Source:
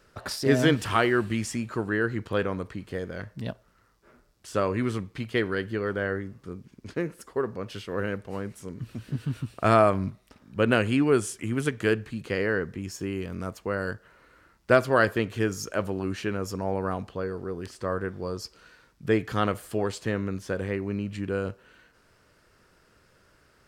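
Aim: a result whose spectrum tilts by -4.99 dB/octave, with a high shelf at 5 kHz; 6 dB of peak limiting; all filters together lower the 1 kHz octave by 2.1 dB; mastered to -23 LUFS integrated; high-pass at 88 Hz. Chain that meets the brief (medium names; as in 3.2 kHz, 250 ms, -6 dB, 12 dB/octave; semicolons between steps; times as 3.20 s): high-pass 88 Hz; peaking EQ 1 kHz -3.5 dB; treble shelf 5 kHz +6.5 dB; trim +6.5 dB; peak limiter -6 dBFS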